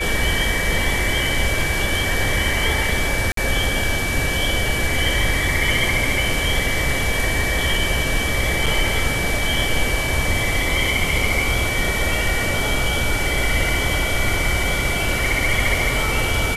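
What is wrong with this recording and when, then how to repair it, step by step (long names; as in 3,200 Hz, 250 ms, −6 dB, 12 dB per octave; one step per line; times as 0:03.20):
whistle 2,300 Hz −24 dBFS
0:03.32–0:03.37: drop-out 53 ms
0:08.66–0:08.67: drop-out 5.3 ms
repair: notch filter 2,300 Hz, Q 30
repair the gap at 0:03.32, 53 ms
repair the gap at 0:08.66, 5.3 ms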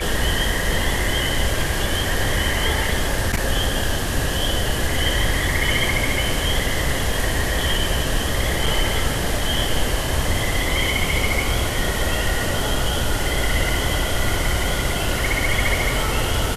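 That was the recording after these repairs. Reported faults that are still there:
none of them is left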